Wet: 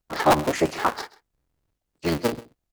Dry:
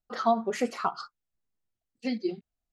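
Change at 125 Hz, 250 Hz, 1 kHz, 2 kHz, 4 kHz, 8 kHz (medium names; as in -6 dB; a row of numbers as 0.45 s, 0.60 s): +16.5 dB, +4.5 dB, +6.0 dB, +11.0 dB, +9.5 dB, +10.5 dB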